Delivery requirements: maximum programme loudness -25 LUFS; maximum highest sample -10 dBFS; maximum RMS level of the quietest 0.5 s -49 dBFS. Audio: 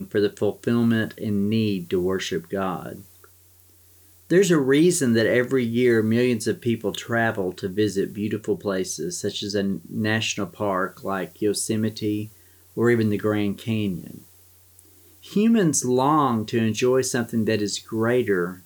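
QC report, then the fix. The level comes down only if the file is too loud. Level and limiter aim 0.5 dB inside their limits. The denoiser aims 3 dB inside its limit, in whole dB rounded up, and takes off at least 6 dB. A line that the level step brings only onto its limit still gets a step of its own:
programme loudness -23.0 LUFS: fail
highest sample -7.0 dBFS: fail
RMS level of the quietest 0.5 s -54 dBFS: pass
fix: trim -2.5 dB; peak limiter -10.5 dBFS

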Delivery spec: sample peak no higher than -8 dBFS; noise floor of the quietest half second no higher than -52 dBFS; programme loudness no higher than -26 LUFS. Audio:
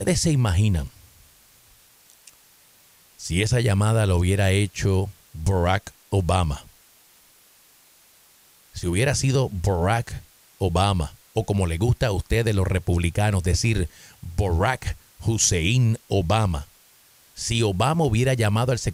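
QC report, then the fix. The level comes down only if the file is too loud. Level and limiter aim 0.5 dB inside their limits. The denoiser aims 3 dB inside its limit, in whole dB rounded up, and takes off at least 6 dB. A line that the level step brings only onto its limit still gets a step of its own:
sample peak -7.0 dBFS: fail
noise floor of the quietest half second -55 dBFS: pass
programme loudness -22.5 LUFS: fail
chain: trim -4 dB

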